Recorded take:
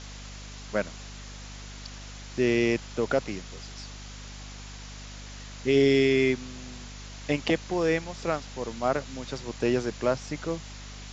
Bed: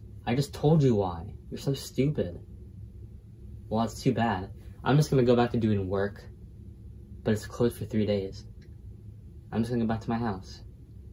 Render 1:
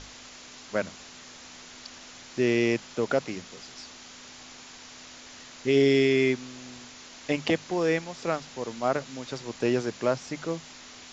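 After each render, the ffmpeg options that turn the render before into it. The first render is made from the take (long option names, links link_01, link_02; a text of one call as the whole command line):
ffmpeg -i in.wav -af "bandreject=frequency=50:width_type=h:width=6,bandreject=frequency=100:width_type=h:width=6,bandreject=frequency=150:width_type=h:width=6,bandreject=frequency=200:width_type=h:width=6" out.wav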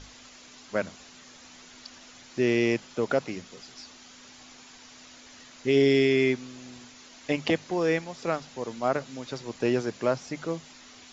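ffmpeg -i in.wav -af "afftdn=noise_reduction=6:noise_floor=-47" out.wav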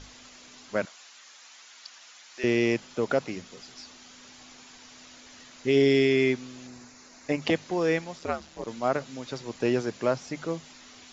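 ffmpeg -i in.wav -filter_complex "[0:a]asettb=1/sr,asplit=3[link_01][link_02][link_03];[link_01]atrim=end=0.854[link_04];[link_02]atrim=start=0.85:end=2.44,asetpts=PTS-STARTPTS,afade=type=in:duration=0.004:curve=qsin,afade=type=out:start_time=1.586:duration=0.004:curve=qsin,highpass=930[link_05];[link_03]atrim=start=2.436[link_06];[link_04][link_05]acrossfade=duration=0.004:curve1=hsin:curve2=qsin[link_07];[link_07][link_06]acrossfade=duration=0.004:curve1=qsin:curve2=hsin,asettb=1/sr,asplit=3[link_08][link_09][link_10];[link_08]atrim=end=6.674[link_11];[link_09]atrim=start=6.67:end=7.42,asetpts=PTS-STARTPTS,afade=type=in:duration=0.004:curve=qsin,afade=type=out:start_time=0.746:duration=0.004:curve=qsin,equalizer=frequency=3200:width_type=o:width=0.45:gain=-13[link_12];[link_10]atrim=start=7.416[link_13];[link_11][link_12]acrossfade=duration=0.004:curve1=hsin:curve2=qsin[link_14];[link_14][link_13]acrossfade=duration=0.004:curve1=qsin:curve2=hsin,asplit=3[link_15][link_16][link_17];[link_15]afade=type=out:start_time=8.18:duration=0.02[link_18];[link_16]aeval=exprs='val(0)*sin(2*PI*75*n/s)':channel_layout=same,afade=type=in:start_time=8.18:duration=0.02,afade=type=out:start_time=8.66:duration=0.02[link_19];[link_17]afade=type=in:start_time=8.66:duration=0.02[link_20];[link_18][link_19][link_20]amix=inputs=3:normalize=0" out.wav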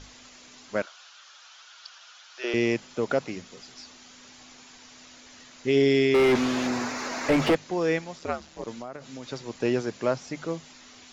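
ffmpeg -i in.wav -filter_complex "[0:a]asettb=1/sr,asplit=3[link_01][link_02][link_03];[link_01]atrim=end=0.824[link_04];[link_02]atrim=start=0.82:end=2.54,asetpts=PTS-STARTPTS,afade=type=in:duration=0.004:curve=qsin,afade=type=out:start_time=1.716:duration=0.004:curve=qsin,highpass=frequency=400:width=0.5412,highpass=frequency=400:width=1.3066,equalizer=frequency=460:width_type=q:width=4:gain=-4,equalizer=frequency=1400:width_type=q:width=4:gain=8,equalizer=frequency=2000:width_type=q:width=4:gain=-6,equalizer=frequency=3200:width_type=q:width=4:gain=4,lowpass=frequency=6300:width=0.5412,lowpass=frequency=6300:width=1.3066[link_05];[link_03]atrim=start=2.536[link_06];[link_04][link_05]acrossfade=duration=0.004:curve1=hsin:curve2=qsin[link_07];[link_07][link_06]acrossfade=duration=0.004:curve1=qsin:curve2=hsin,asettb=1/sr,asplit=3[link_08][link_09][link_10];[link_08]atrim=end=6.144[link_11];[link_09]atrim=start=6.14:end=7.55,asetpts=PTS-STARTPTS,afade=type=in:duration=0.004:curve=qsin,afade=type=out:start_time=1.406:duration=0.004:curve=qsin,asplit=2[link_12][link_13];[link_13]highpass=frequency=720:poles=1,volume=36dB,asoftclip=type=tanh:threshold=-11.5dB[link_14];[link_12][link_14]amix=inputs=2:normalize=0,lowpass=frequency=1000:poles=1,volume=-6dB[link_15];[link_10]atrim=start=7.546[link_16];[link_11][link_15]acrossfade=duration=0.004:curve1=hsin:curve2=qsin[link_17];[link_17][link_16]acrossfade=duration=0.004:curve1=qsin:curve2=hsin,asettb=1/sr,asplit=3[link_18][link_19][link_20];[link_18]atrim=end=8.794[link_21];[link_19]atrim=start=8.79:end=9.29,asetpts=PTS-STARTPTS,afade=type=in:duration=0.004:curve=qsin,afade=type=out:start_time=0.496:duration=0.004:curve=qsin,acompressor=threshold=-33dB:ratio=10:attack=3.2:release=140:knee=1:detection=peak[link_22];[link_20]atrim=start=9.286[link_23];[link_21][link_22]acrossfade=duration=0.004:curve1=hsin:curve2=qsin[link_24];[link_24][link_23]acrossfade=duration=0.004:curve1=qsin:curve2=hsin" out.wav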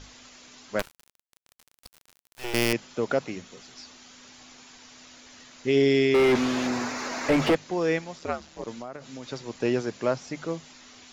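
ffmpeg -i in.wav -filter_complex "[0:a]asettb=1/sr,asplit=3[link_01][link_02][link_03];[link_01]atrim=end=0.794[link_04];[link_02]atrim=start=0.79:end=2.73,asetpts=PTS-STARTPTS,afade=type=in:duration=0.004:curve=qsin,afade=type=out:start_time=1.936:duration=0.004:curve=qsin,acrusher=bits=4:dc=4:mix=0:aa=0.000001[link_05];[link_03]atrim=start=2.726[link_06];[link_04][link_05]acrossfade=duration=0.004:curve1=hsin:curve2=qsin[link_07];[link_07][link_06]acrossfade=duration=0.004:curve1=qsin:curve2=hsin,asettb=1/sr,asplit=3[link_08][link_09][link_10];[link_08]atrim=end=3.254[link_11];[link_09]atrim=start=3.25:end=3.73,asetpts=PTS-STARTPTS,afade=type=in:duration=0.004:curve=qsin,afade=type=out:start_time=0.476:duration=0.004:curve=qsin,bandreject=frequency=4900:width=12[link_12];[link_10]atrim=start=3.726[link_13];[link_11][link_12]acrossfade=duration=0.004:curve1=hsin:curve2=qsin[link_14];[link_14][link_13]acrossfade=duration=0.004:curve1=qsin:curve2=hsin" out.wav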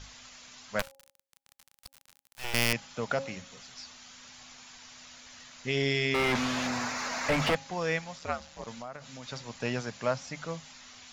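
ffmpeg -i in.wav -af "equalizer=frequency=350:width=1.7:gain=-14.5,bandreject=frequency=272.3:width_type=h:width=4,bandreject=frequency=544.6:width_type=h:width=4,bandreject=frequency=816.9:width_type=h:width=4" out.wav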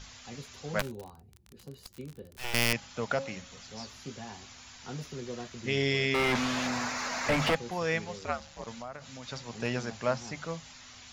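ffmpeg -i in.wav -i bed.wav -filter_complex "[1:a]volume=-17.5dB[link_01];[0:a][link_01]amix=inputs=2:normalize=0" out.wav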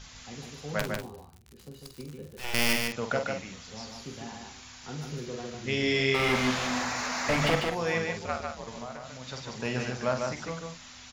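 ffmpeg -i in.wav -filter_complex "[0:a]asplit=2[link_01][link_02];[link_02]adelay=47,volume=-7.5dB[link_03];[link_01][link_03]amix=inputs=2:normalize=0,aecho=1:1:148:0.631" out.wav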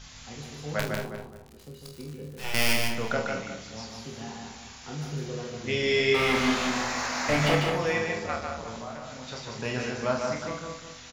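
ffmpeg -i in.wav -filter_complex "[0:a]asplit=2[link_01][link_02];[link_02]adelay=27,volume=-5dB[link_03];[link_01][link_03]amix=inputs=2:normalize=0,asplit=2[link_04][link_05];[link_05]adelay=209,lowpass=frequency=1900:poles=1,volume=-7dB,asplit=2[link_06][link_07];[link_07]adelay=209,lowpass=frequency=1900:poles=1,volume=0.29,asplit=2[link_08][link_09];[link_09]adelay=209,lowpass=frequency=1900:poles=1,volume=0.29,asplit=2[link_10][link_11];[link_11]adelay=209,lowpass=frequency=1900:poles=1,volume=0.29[link_12];[link_04][link_06][link_08][link_10][link_12]amix=inputs=5:normalize=0" out.wav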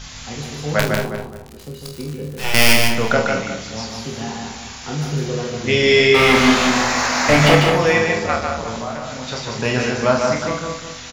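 ffmpeg -i in.wav -af "volume=11.5dB,alimiter=limit=-1dB:level=0:latency=1" out.wav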